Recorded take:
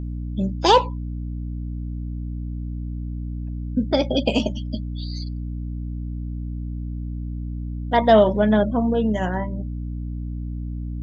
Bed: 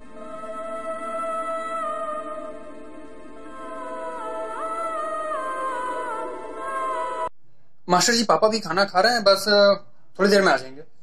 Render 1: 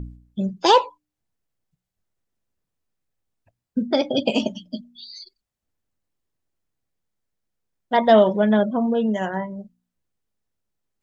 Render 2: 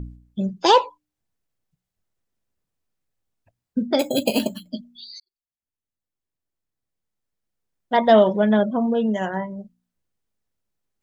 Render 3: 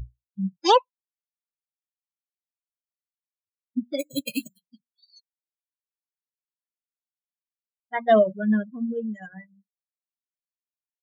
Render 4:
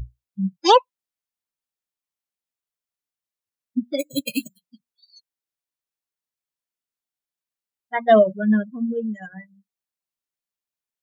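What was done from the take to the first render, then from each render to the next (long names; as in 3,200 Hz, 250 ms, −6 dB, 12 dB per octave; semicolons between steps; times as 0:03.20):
hum removal 60 Hz, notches 5
0:03.99–0:04.70: bad sample-rate conversion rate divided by 6×, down none, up hold; 0:05.20–0:07.93: fade in
spectral dynamics exaggerated over time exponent 3
level +3.5 dB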